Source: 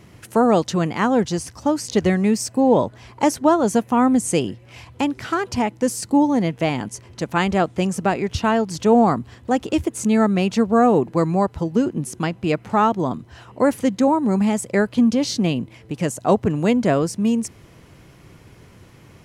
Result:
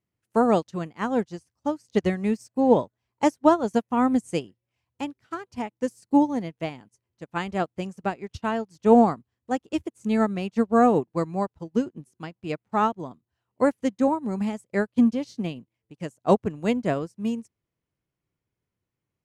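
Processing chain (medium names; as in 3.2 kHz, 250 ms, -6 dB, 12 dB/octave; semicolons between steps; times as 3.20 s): upward expansion 2.5:1, over -37 dBFS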